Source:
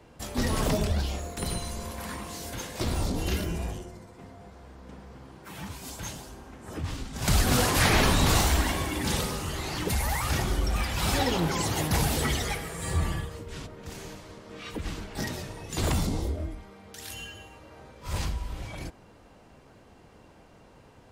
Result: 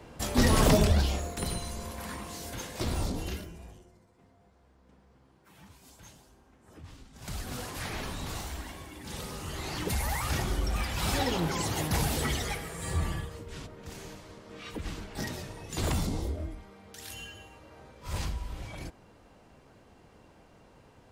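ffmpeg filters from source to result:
-af "volume=16.5dB,afade=t=out:st=0.76:d=0.78:silence=0.446684,afade=t=out:st=3.04:d=0.47:silence=0.237137,afade=t=in:st=9.05:d=0.63:silence=0.251189"

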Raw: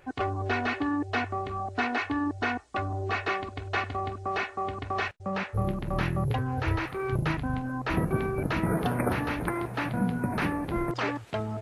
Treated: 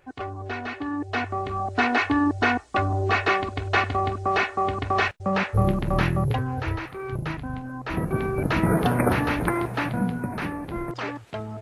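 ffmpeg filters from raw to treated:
-af "volume=15.5dB,afade=t=in:st=0.74:d=1.29:silence=0.281838,afade=t=out:st=5.76:d=1.06:silence=0.334965,afade=t=in:st=7.85:d=0.79:silence=0.398107,afade=t=out:st=9.55:d=0.8:silence=0.421697"

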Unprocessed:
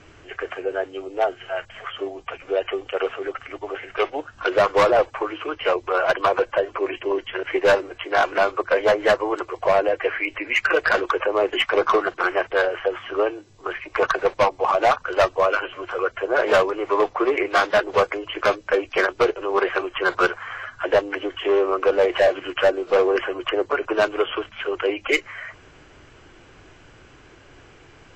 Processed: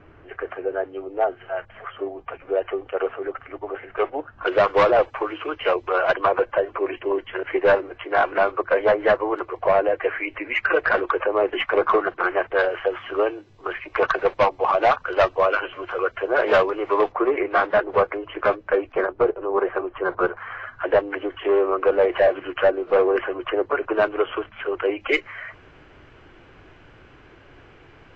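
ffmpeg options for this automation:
-af "asetnsamples=n=441:p=0,asendcmd='4.47 lowpass f 3600;6.15 lowpass f 2200;12.59 lowpass f 3600;17.12 lowpass f 1800;18.92 lowpass f 1100;20.37 lowpass f 2100;25 lowpass f 3100',lowpass=1.6k"

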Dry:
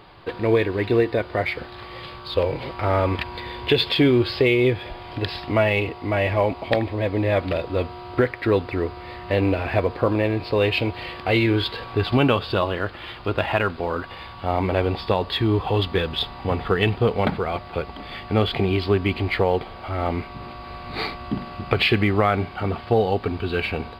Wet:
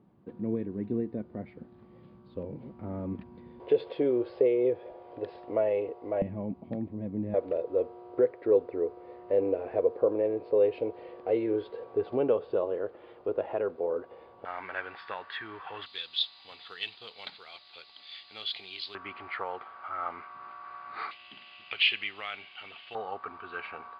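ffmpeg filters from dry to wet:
-af "asetnsamples=n=441:p=0,asendcmd='3.6 bandpass f 500;6.22 bandpass f 200;7.34 bandpass f 470;14.45 bandpass f 1600;15.86 bandpass f 4000;18.95 bandpass f 1300;21.11 bandpass f 2900;22.95 bandpass f 1200',bandpass=f=210:t=q:w=4:csg=0"

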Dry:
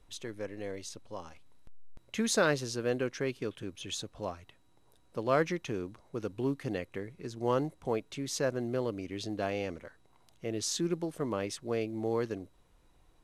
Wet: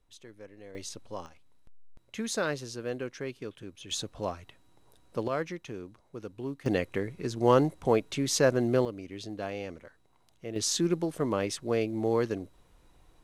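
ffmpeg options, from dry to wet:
-af "asetnsamples=n=441:p=0,asendcmd='0.75 volume volume 3dB;1.26 volume volume -3.5dB;3.91 volume volume 4dB;5.28 volume volume -4.5dB;6.66 volume volume 7.5dB;8.85 volume volume -2.5dB;10.56 volume volume 4.5dB',volume=-9dB"

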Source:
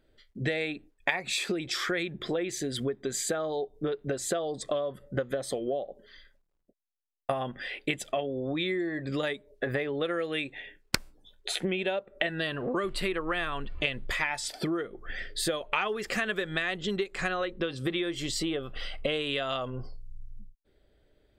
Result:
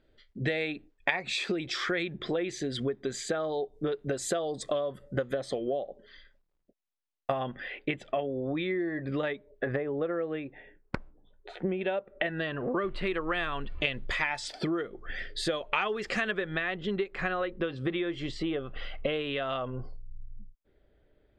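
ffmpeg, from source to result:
-af "asetnsamples=n=441:p=0,asendcmd='3.72 lowpass f 9700;5.34 lowpass f 4900;7.6 lowpass f 2400;9.76 lowpass f 1200;11.81 lowpass f 2400;13.07 lowpass f 5500;16.31 lowpass f 2600',lowpass=5.1k"

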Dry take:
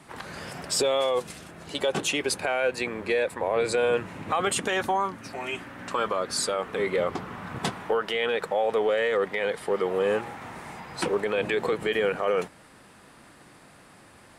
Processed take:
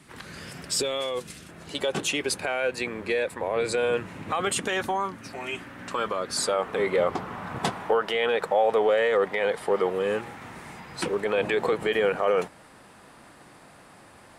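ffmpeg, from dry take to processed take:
-af "asetnsamples=n=441:p=0,asendcmd='1.49 equalizer g -2.5;6.37 equalizer g 4.5;9.9 equalizer g -4;11.25 equalizer g 3.5',equalizer=f=770:t=o:w=1.4:g=-9"

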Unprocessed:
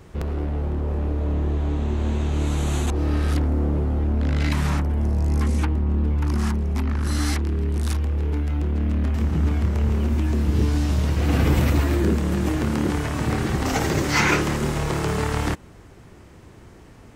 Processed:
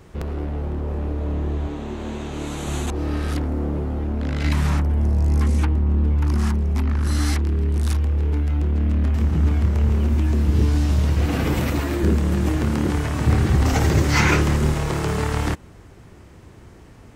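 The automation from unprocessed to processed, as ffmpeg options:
-af "asetnsamples=n=441:p=0,asendcmd='1.67 equalizer g -11.5;2.67 equalizer g -3.5;4.44 equalizer g 3;11.26 equalizer g -5;12.03 equalizer g 4;13.25 equalizer g 10.5;14.74 equalizer g 2.5',equalizer=f=75:t=o:w=1.7:g=-1.5"

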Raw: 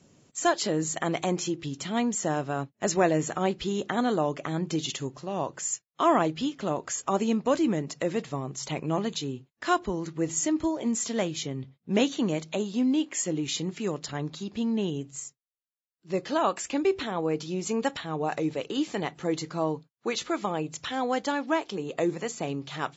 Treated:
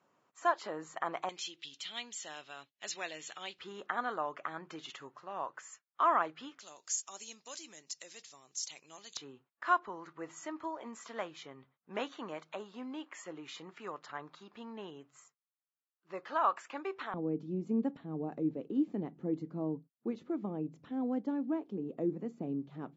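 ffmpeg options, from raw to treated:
-af "asetnsamples=n=441:p=0,asendcmd='1.29 bandpass f 3400;3.59 bandpass f 1300;6.59 bandpass f 5800;9.17 bandpass f 1200;17.14 bandpass f 240',bandpass=f=1.1k:t=q:w=2.1:csg=0"

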